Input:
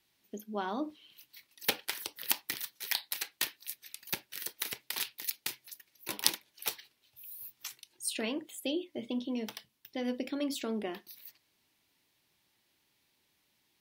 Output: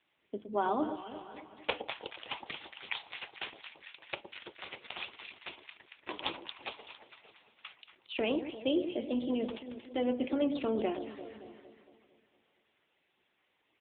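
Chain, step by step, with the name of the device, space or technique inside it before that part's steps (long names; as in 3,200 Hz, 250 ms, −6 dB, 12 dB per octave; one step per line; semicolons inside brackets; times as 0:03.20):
0:00.80–0:01.71: low-shelf EQ 370 Hz −2 dB
delay that swaps between a low-pass and a high-pass 114 ms, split 870 Hz, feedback 73%, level −8.5 dB
dynamic equaliser 1,800 Hz, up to −8 dB, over −57 dBFS, Q 2.7
satellite phone (band-pass filter 310–3,100 Hz; single-tap delay 608 ms −21.5 dB; level +7 dB; AMR narrowband 6.7 kbit/s 8,000 Hz)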